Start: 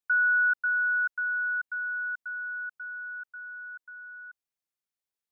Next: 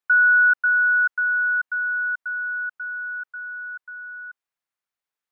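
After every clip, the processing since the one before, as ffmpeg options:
-af "equalizer=f=1.3k:w=0.5:g=10.5,volume=-2.5dB"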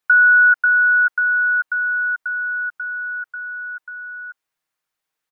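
-af "aecho=1:1:6.4:0.43,volume=7dB"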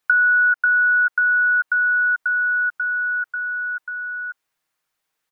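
-af "acompressor=threshold=-20dB:ratio=4,volume=4dB"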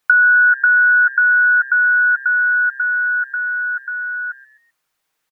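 -filter_complex "[0:a]asplit=4[a][b][c][d];[b]adelay=129,afreqshift=130,volume=-20dB[e];[c]adelay=258,afreqshift=260,volume=-28dB[f];[d]adelay=387,afreqshift=390,volume=-35.9dB[g];[a][e][f][g]amix=inputs=4:normalize=0,volume=4.5dB"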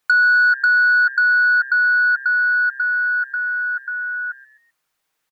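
-af "asoftclip=type=tanh:threshold=-7dB,volume=-1dB"

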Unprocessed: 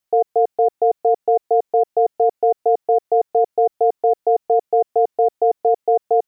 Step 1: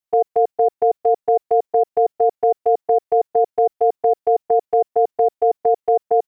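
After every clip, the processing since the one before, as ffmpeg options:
-af "agate=range=-9dB:threshold=-21dB:ratio=16:detection=peak"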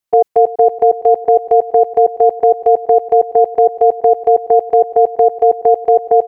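-af "aecho=1:1:331|662|993|1324:0.141|0.0678|0.0325|0.0156,volume=6.5dB"

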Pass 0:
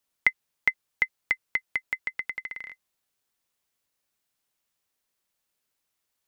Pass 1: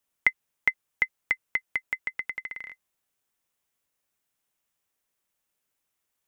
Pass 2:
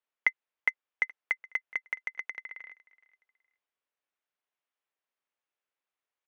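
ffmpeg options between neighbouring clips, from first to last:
-af "equalizer=f=4.4k:t=o:w=0.55:g=-5.5"
-filter_complex "[0:a]asplit=2[a][b];[b]acrusher=bits=3:mix=0:aa=0.000001,volume=-8.5dB[c];[a][c]amix=inputs=2:normalize=0,highpass=390,lowpass=3.1k,aecho=1:1:420|840:0.0794|0.0222,volume=-5.5dB"

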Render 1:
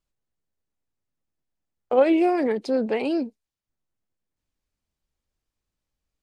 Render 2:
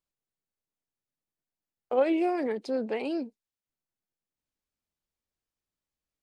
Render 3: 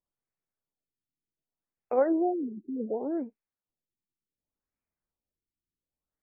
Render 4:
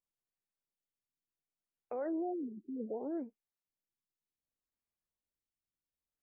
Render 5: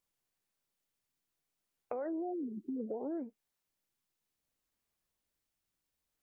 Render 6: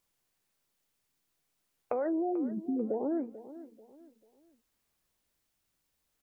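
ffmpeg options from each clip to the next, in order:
-af "lowshelf=f=97:g=-10,volume=-6dB"
-af "afftfilt=real='re*lt(b*sr/1024,380*pow(2700/380,0.5+0.5*sin(2*PI*0.67*pts/sr)))':imag='im*lt(b*sr/1024,380*pow(2700/380,0.5+0.5*sin(2*PI*0.67*pts/sr)))':win_size=1024:overlap=0.75"
-af "alimiter=limit=-23.5dB:level=0:latency=1:release=41,volume=-7dB"
-af "acompressor=threshold=-45dB:ratio=4,volume=8dB"
-af "aecho=1:1:440|880|1320:0.168|0.0571|0.0194,volume=6.5dB"

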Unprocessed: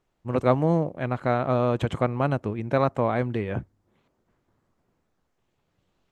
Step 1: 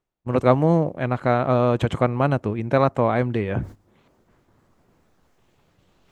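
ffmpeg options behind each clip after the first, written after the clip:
-af "areverse,acompressor=mode=upward:threshold=-26dB:ratio=2.5,areverse,agate=range=-18dB:threshold=-39dB:ratio=16:detection=peak,volume=4dB"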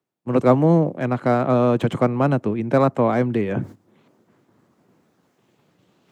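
-filter_complex "[0:a]highpass=f=110:w=0.5412,highpass=f=110:w=1.3066,acrossover=split=210|330|1700[a][b][c][d];[b]acontrast=89[e];[d]volume=31.5dB,asoftclip=hard,volume=-31.5dB[f];[a][e][c][f]amix=inputs=4:normalize=0"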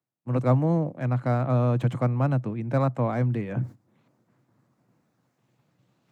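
-af "equalizer=f=125:t=o:w=0.33:g=11,equalizer=f=400:t=o:w=0.33:g=-7,equalizer=f=3.15k:t=o:w=0.33:g=-4,volume=-8dB"

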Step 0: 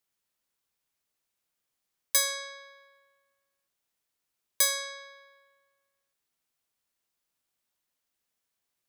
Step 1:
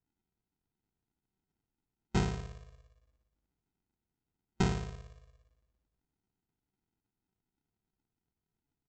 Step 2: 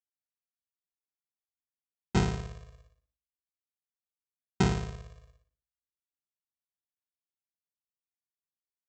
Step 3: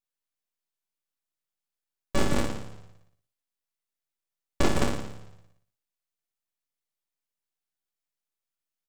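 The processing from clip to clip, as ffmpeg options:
-af "afftfilt=real='re*(1-between(b*sr/4096,220,1200))':imag='im*(1-between(b*sr/4096,220,1200))':win_size=4096:overlap=0.75,aresample=16000,acrusher=samples=28:mix=1:aa=0.000001,aresample=44100"
-af "highpass=f=48:w=0.5412,highpass=f=48:w=1.3066,agate=range=-33dB:threshold=-59dB:ratio=3:detection=peak,volume=4dB"
-af "aecho=1:1:37.9|157.4|209.9:0.794|0.708|0.631,aeval=exprs='abs(val(0))':c=same,volume=2.5dB"

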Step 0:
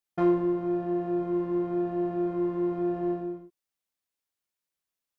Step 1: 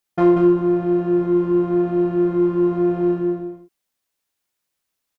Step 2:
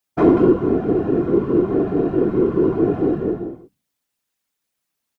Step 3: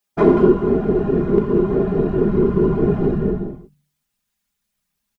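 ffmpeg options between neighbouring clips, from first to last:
-af "aecho=1:1:184:0.531,volume=8.5dB"
-af "equalizer=f=220:w=4.7:g=8,bandreject=f=60:t=h:w=6,bandreject=f=120:t=h:w=6,bandreject=f=180:t=h:w=6,afftfilt=real='hypot(re,im)*cos(2*PI*random(0))':imag='hypot(re,im)*sin(2*PI*random(1))':win_size=512:overlap=0.75,volume=6dB"
-af "aecho=1:1:4.9:0.68,bandreject=f=146.9:t=h:w=4,bandreject=f=293.8:t=h:w=4,asubboost=boost=6:cutoff=160"

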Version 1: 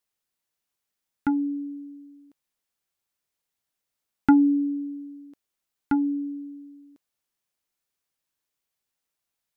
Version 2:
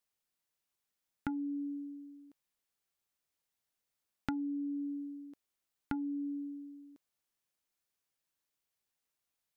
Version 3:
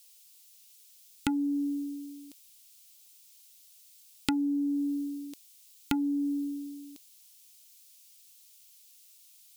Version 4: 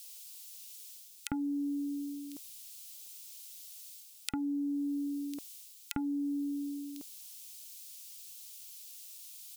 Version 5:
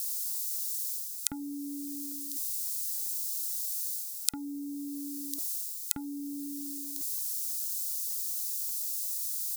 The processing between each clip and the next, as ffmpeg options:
-af "acompressor=threshold=-31dB:ratio=12,volume=-3.5dB"
-af "aexciter=amount=6.1:drive=7.6:freq=2.4k,asoftclip=type=tanh:threshold=-20.5dB,volume=8dB"
-filter_complex "[0:a]acompressor=threshold=-37dB:ratio=3,acrossover=split=1700[a][b];[a]adelay=50[c];[c][b]amix=inputs=2:normalize=0,areverse,acompressor=mode=upward:threshold=-44dB:ratio=2.5,areverse,volume=2.5dB"
-af "aexciter=amount=6.1:drive=6.4:freq=3.9k,volume=-4.5dB"

